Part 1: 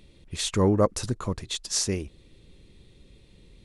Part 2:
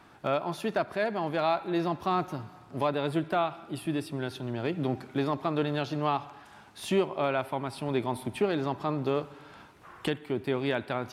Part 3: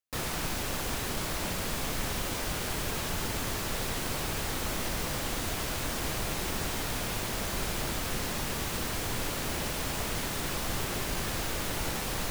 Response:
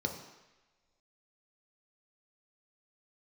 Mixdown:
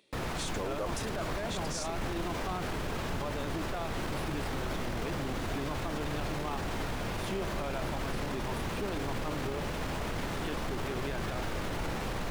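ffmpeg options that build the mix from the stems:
-filter_complex "[0:a]highpass=400,volume=-6dB[link_01];[1:a]adelay=400,volume=-6dB[link_02];[2:a]lowpass=frequency=1700:poles=1,volume=2dB[link_03];[link_01][link_02][link_03]amix=inputs=3:normalize=0,alimiter=level_in=2dB:limit=-24dB:level=0:latency=1:release=14,volume=-2dB"

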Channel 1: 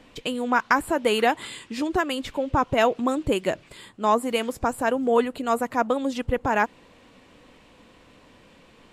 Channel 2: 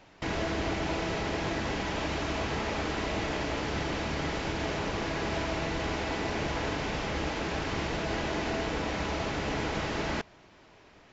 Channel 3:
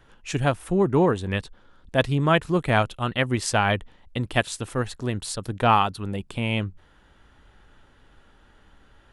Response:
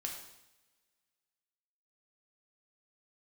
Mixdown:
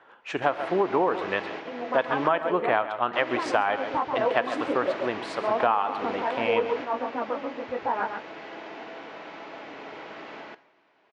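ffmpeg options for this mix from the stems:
-filter_complex "[0:a]aphaser=in_gain=1:out_gain=1:delay=3.8:decay=0.5:speed=0.44:type=triangular,lowpass=1200,flanger=delay=16:depth=5:speed=2.6,adelay=1400,volume=-1dB,asplit=2[link_01][link_02];[link_02]volume=-6dB[link_03];[1:a]adelay=200,volume=-5.5dB,asplit=3[link_04][link_05][link_06];[link_04]atrim=end=2.28,asetpts=PTS-STARTPTS,afade=type=out:start_time=2.276:duration=0.004:curve=hsin[link_07];[link_05]atrim=start=2.28:end=3.13,asetpts=PTS-STARTPTS,volume=0[link_08];[link_06]atrim=start=3.13,asetpts=PTS-STARTPTS,afade=type=in:duration=0.004:curve=hsin[link_09];[link_07][link_08][link_09]concat=n=3:v=0:a=1,asplit=3[link_10][link_11][link_12];[link_11]volume=-4.5dB[link_13];[link_12]volume=-3.5dB[link_14];[2:a]equalizer=frequency=890:width_type=o:width=2.1:gain=9,volume=-3dB,asplit=4[link_15][link_16][link_17][link_18];[link_16]volume=-9.5dB[link_19];[link_17]volume=-12.5dB[link_20];[link_18]apad=whole_len=499214[link_21];[link_10][link_21]sidechaingate=range=-33dB:threshold=-46dB:ratio=16:detection=peak[link_22];[3:a]atrim=start_sample=2205[link_23];[link_13][link_19]amix=inputs=2:normalize=0[link_24];[link_24][link_23]afir=irnorm=-1:irlink=0[link_25];[link_03][link_14][link_20]amix=inputs=3:normalize=0,aecho=0:1:134:1[link_26];[link_01][link_22][link_15][link_25][link_26]amix=inputs=5:normalize=0,highpass=350,lowpass=3000,acompressor=threshold=-19dB:ratio=8"

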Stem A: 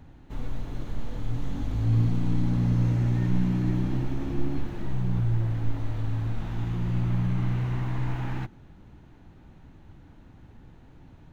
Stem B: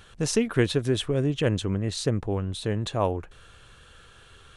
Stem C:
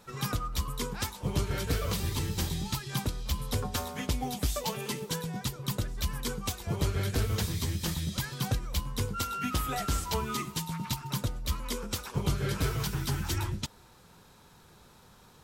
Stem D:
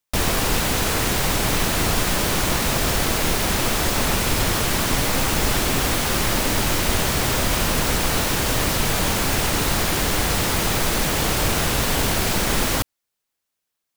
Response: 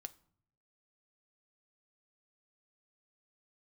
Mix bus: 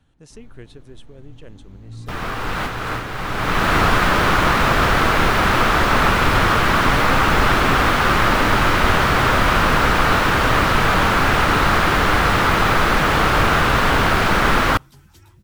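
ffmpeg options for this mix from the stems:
-filter_complex "[0:a]volume=-13.5dB[link_01];[1:a]volume=-19dB,asplit=2[link_02][link_03];[2:a]adelay=1850,volume=-18dB[link_04];[3:a]acrossover=split=3900[link_05][link_06];[link_06]acompressor=threshold=-41dB:ratio=4:attack=1:release=60[link_07];[link_05][link_07]amix=inputs=2:normalize=0,equalizer=frequency=1300:width=1.5:gain=9.5,adelay=1950,volume=3dB,asplit=2[link_08][link_09];[link_09]volume=-14.5dB[link_10];[link_03]apad=whole_len=701987[link_11];[link_08][link_11]sidechaincompress=threshold=-53dB:ratio=10:attack=11:release=543[link_12];[4:a]atrim=start_sample=2205[link_13];[link_10][link_13]afir=irnorm=-1:irlink=0[link_14];[link_01][link_02][link_04][link_12][link_14]amix=inputs=5:normalize=0"

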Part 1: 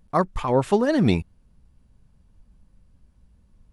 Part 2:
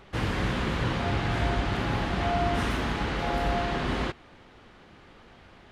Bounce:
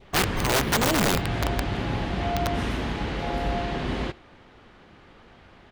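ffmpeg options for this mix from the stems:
ffmpeg -i stem1.wav -i stem2.wav -filter_complex "[0:a]acrusher=samples=6:mix=1:aa=0.000001,equalizer=frequency=210:width_type=o:width=0.37:gain=-3,volume=-2dB[link_01];[1:a]highshelf=frequency=5800:gain=-4.5,volume=1dB,asplit=2[link_02][link_03];[link_03]volume=-23dB,aecho=0:1:75:1[link_04];[link_01][link_02][link_04]amix=inputs=3:normalize=0,adynamicequalizer=threshold=0.0112:dfrequency=1300:dqfactor=1.4:tfrequency=1300:tqfactor=1.4:attack=5:release=100:ratio=0.375:range=2.5:mode=cutabove:tftype=bell,aeval=exprs='(mod(5.96*val(0)+1,2)-1)/5.96':channel_layout=same" out.wav

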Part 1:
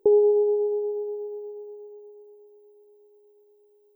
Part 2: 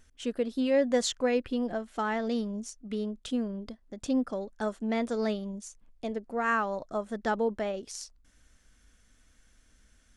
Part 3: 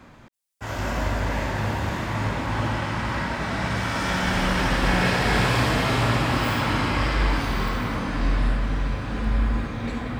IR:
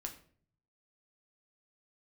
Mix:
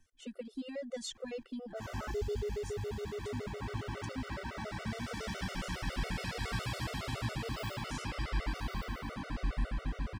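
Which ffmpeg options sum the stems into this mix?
-filter_complex "[0:a]adelay=2050,volume=-0.5dB[link_01];[1:a]volume=-7dB[link_02];[2:a]adelay=1150,volume=-9.5dB[link_03];[link_01][link_02][link_03]amix=inputs=3:normalize=0,acrossover=split=130|3000[link_04][link_05][link_06];[link_05]acompressor=threshold=-36dB:ratio=5[link_07];[link_04][link_07][link_06]amix=inputs=3:normalize=0,afftfilt=real='re*gt(sin(2*PI*7.2*pts/sr)*(1-2*mod(floor(b*sr/1024/380),2)),0)':imag='im*gt(sin(2*PI*7.2*pts/sr)*(1-2*mod(floor(b*sr/1024/380),2)),0)':win_size=1024:overlap=0.75"

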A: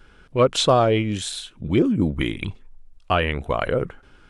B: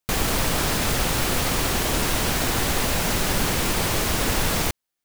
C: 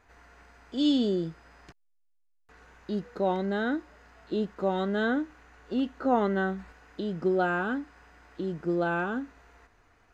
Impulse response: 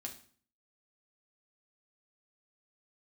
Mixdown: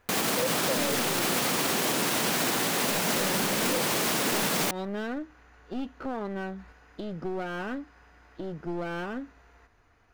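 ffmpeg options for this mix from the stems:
-filter_complex "[0:a]asplit=3[link_01][link_02][link_03];[link_01]bandpass=frequency=530:width_type=q:width=8,volume=0dB[link_04];[link_02]bandpass=frequency=1840:width_type=q:width=8,volume=-6dB[link_05];[link_03]bandpass=frequency=2480:width_type=q:width=8,volume=-9dB[link_06];[link_04][link_05][link_06]amix=inputs=3:normalize=0,volume=-3.5dB[link_07];[1:a]highpass=frequency=170:width=0.5412,highpass=frequency=170:width=1.3066,volume=1dB[link_08];[2:a]bandreject=frequency=7800:width=5.9,alimiter=limit=-21dB:level=0:latency=1:release=266,aeval=exprs='clip(val(0),-1,0.0178)':channel_layout=same,volume=-1.5dB[link_09];[link_07][link_08][link_09]amix=inputs=3:normalize=0,equalizer=frequency=84:width=1:gain=3,alimiter=limit=-17dB:level=0:latency=1:release=68"

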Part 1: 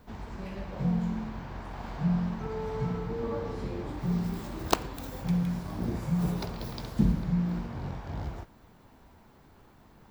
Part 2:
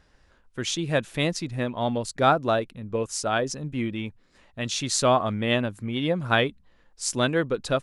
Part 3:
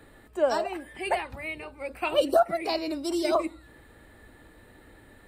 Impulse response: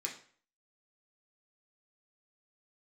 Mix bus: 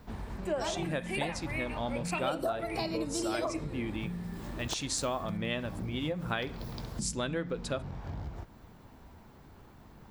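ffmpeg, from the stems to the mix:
-filter_complex "[0:a]equalizer=frequency=72:width=0.39:gain=3.5,acompressor=threshold=-37dB:ratio=6,volume=1dB[link_01];[1:a]volume=-7dB,asplit=2[link_02][link_03];[link_03]volume=-9.5dB[link_04];[2:a]adelay=100,volume=-3.5dB,asplit=2[link_05][link_06];[link_06]volume=-6.5dB[link_07];[3:a]atrim=start_sample=2205[link_08];[link_04][link_07]amix=inputs=2:normalize=0[link_09];[link_09][link_08]afir=irnorm=-1:irlink=0[link_10];[link_01][link_02][link_05][link_10]amix=inputs=4:normalize=0,acompressor=threshold=-30dB:ratio=4"

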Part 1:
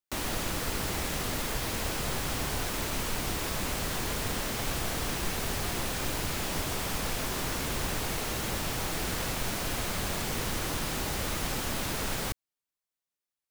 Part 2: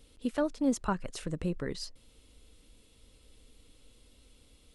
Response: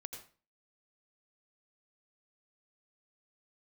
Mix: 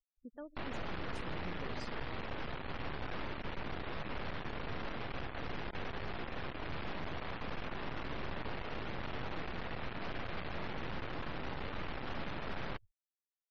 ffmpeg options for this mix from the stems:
-filter_complex "[0:a]aeval=exprs='max(val(0),0)':channel_layout=same,lowpass=2600,adelay=450,volume=1dB,asplit=2[link_01][link_02];[link_02]volume=-19.5dB[link_03];[1:a]volume=-11dB,afade=type=in:start_time=0.76:duration=0.59:silence=0.354813,asplit=2[link_04][link_05];[link_05]volume=-8.5dB[link_06];[2:a]atrim=start_sample=2205[link_07];[link_03][link_06]amix=inputs=2:normalize=0[link_08];[link_08][link_07]afir=irnorm=-1:irlink=0[link_09];[link_01][link_04][link_09]amix=inputs=3:normalize=0,afftfilt=real='re*gte(hypot(re,im),0.00316)':imag='im*gte(hypot(re,im),0.00316)':win_size=1024:overlap=0.75,alimiter=level_in=6dB:limit=-24dB:level=0:latency=1:release=11,volume=-6dB"

